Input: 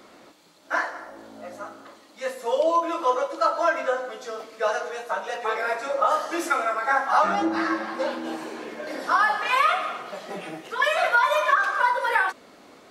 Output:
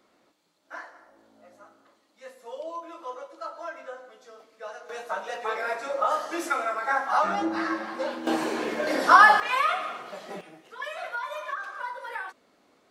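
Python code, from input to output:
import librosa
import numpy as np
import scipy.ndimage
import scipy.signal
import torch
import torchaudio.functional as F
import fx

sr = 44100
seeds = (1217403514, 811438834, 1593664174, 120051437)

y = fx.gain(x, sr, db=fx.steps((0.0, -15.0), (4.89, -3.5), (8.27, 6.5), (9.4, -4.0), (10.41, -13.5)))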